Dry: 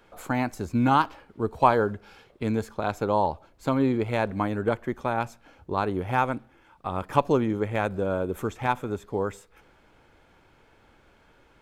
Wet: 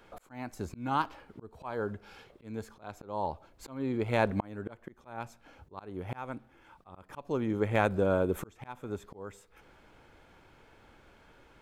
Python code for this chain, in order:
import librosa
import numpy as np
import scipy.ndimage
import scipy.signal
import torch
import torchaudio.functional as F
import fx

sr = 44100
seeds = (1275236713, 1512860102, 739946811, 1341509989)

y = fx.auto_swell(x, sr, attack_ms=595.0)